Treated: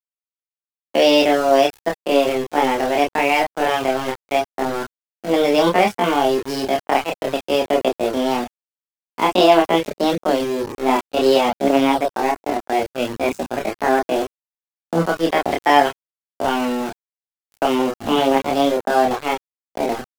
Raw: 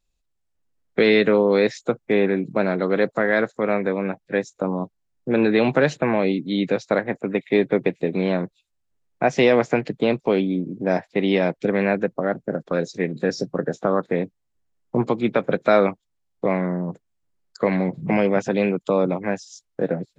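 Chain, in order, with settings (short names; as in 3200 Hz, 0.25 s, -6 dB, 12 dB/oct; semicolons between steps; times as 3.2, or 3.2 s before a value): sample gate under -26 dBFS; pitch shift +5.5 st; chorus voices 4, 0.33 Hz, delay 29 ms, depth 1.5 ms; gain +5.5 dB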